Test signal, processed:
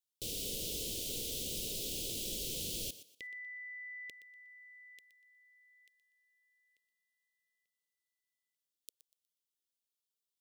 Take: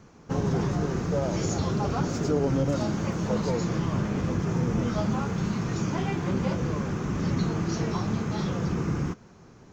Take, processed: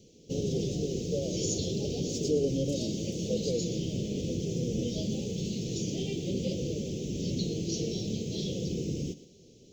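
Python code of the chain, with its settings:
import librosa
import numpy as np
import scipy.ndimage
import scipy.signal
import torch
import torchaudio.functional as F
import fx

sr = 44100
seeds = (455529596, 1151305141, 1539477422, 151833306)

y = scipy.signal.sosfilt(scipy.signal.ellip(3, 1.0, 70, [490.0, 3100.0], 'bandstop', fs=sr, output='sos'), x)
y = fx.low_shelf(y, sr, hz=340.0, db=-12.0)
y = fx.echo_thinned(y, sr, ms=121, feedback_pct=28, hz=260.0, wet_db=-14)
y = y * 10.0 ** (4.0 / 20.0)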